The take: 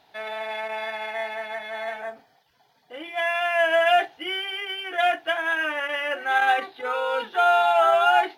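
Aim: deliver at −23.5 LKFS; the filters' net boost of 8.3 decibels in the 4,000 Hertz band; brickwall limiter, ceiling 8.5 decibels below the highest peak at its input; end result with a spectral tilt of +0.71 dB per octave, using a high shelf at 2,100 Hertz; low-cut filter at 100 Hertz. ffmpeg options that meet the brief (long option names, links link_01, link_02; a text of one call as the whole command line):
ffmpeg -i in.wav -af "highpass=100,highshelf=frequency=2100:gain=4.5,equalizer=frequency=4000:width_type=o:gain=8,alimiter=limit=-14dB:level=0:latency=1" out.wav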